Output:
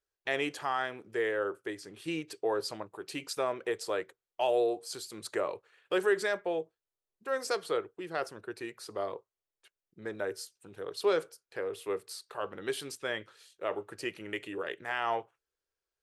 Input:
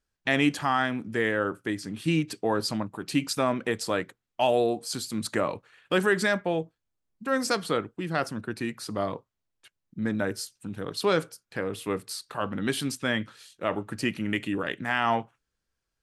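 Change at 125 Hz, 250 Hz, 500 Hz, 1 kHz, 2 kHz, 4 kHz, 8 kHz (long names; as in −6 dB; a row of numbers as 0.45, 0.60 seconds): −17.5, −12.0, −3.0, −6.5, −7.0, −7.5, −7.5 decibels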